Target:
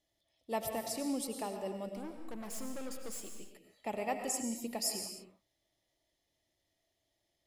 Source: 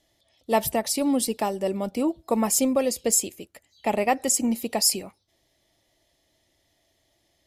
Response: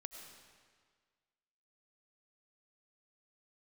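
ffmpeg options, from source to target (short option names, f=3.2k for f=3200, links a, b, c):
-filter_complex "[0:a]asettb=1/sr,asplit=3[a][b][c];[a]atrim=end=1.924[d];[b]atrim=start=1.92:end=3.37,asetpts=PTS-STARTPTS,afade=t=in:d=0.004:c=qsin,afade=t=out:st=1.446:d=0.004:c=qsin,aeval=exprs='(tanh(25.1*val(0)+0.5)-tanh(0.5))/25.1':c=same[e];[c]atrim=start=3.366[f];[d][e]acrossfade=d=0.004:c1=hsin:c2=qsin[g];[g][f]acrossfade=d=0.004:c1=qsin:c2=hsin[h];[1:a]atrim=start_sample=2205,afade=t=out:st=0.36:d=0.01,atrim=end_sample=16317[i];[h][i]afir=irnorm=-1:irlink=0,volume=-8.5dB"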